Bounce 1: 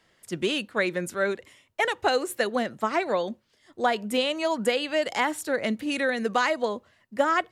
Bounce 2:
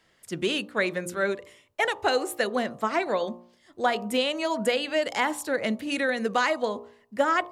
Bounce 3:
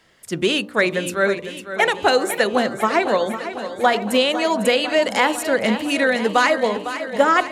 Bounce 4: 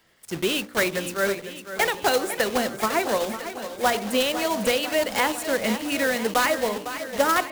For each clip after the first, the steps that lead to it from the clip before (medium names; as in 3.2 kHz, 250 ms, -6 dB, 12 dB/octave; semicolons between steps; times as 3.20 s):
de-hum 58.99 Hz, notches 21
modulated delay 502 ms, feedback 67%, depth 53 cents, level -11.5 dB; trim +7.5 dB
block-companded coder 3-bit; trim -5.5 dB